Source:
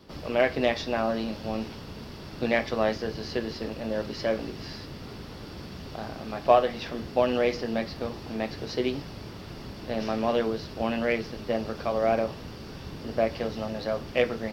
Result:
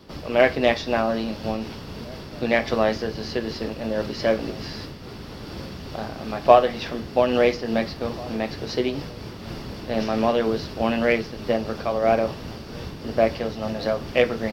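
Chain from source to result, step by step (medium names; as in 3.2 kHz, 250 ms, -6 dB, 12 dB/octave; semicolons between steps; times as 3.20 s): echo from a far wall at 290 m, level -21 dB; random flutter of the level, depth 55%; trim +7 dB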